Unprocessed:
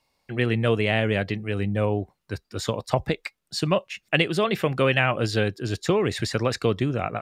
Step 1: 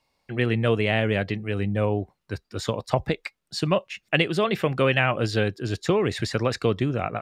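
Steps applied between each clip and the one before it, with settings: high shelf 7200 Hz -5.5 dB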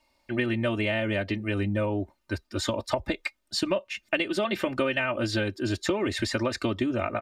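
comb 3.3 ms, depth 98%; compressor, threshold -23 dBFS, peak gain reduction 10 dB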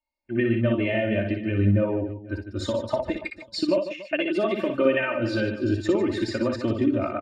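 on a send: reverse bouncing-ball echo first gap 60 ms, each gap 1.5×, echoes 5; on the sum: spectral expander 1.5:1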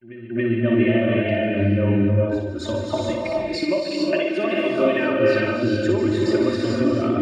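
pre-echo 0.277 s -16 dB; non-linear reverb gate 0.48 s rising, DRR -1.5 dB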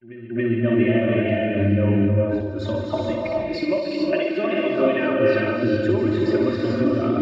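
reverse delay 0.344 s, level -13 dB; air absorption 150 m

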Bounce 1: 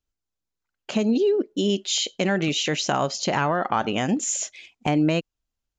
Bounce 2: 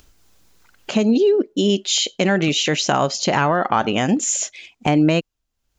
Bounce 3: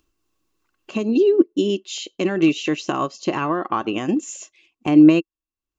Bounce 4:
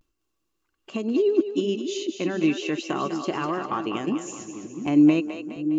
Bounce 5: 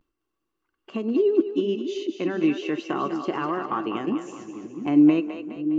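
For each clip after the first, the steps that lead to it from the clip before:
upward compressor, threshold -38 dBFS; gain +5 dB
small resonant body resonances 330/1100/2700 Hz, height 14 dB, ringing for 40 ms; upward expander 1.5:1, over -31 dBFS; gain -4.5 dB
split-band echo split 400 Hz, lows 0.685 s, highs 0.205 s, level -8 dB; vibrato 0.36 Hz 46 cents; gain -5.5 dB
reverb RT60 0.60 s, pre-delay 3 ms, DRR 16 dB; gain -7.5 dB

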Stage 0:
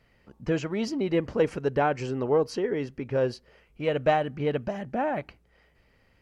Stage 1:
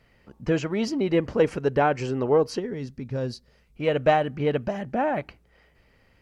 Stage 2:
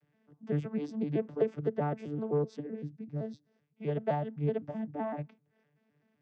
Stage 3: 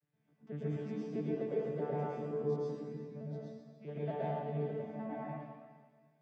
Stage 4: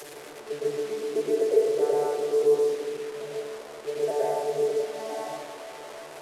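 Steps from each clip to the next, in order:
spectral gain 2.59–3.76, 270–3400 Hz -9 dB; gain +3 dB
arpeggiated vocoder bare fifth, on D3, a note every 0.128 s; gain -8 dB
resonator 78 Hz, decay 1.7 s, harmonics all, mix 60%; reverb RT60 1.5 s, pre-delay 98 ms, DRR -7.5 dB; gain -5 dB
delta modulation 64 kbps, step -43 dBFS; resonant low shelf 280 Hz -12.5 dB, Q 3; notches 60/120/180/240/300 Hz; gain +7.5 dB

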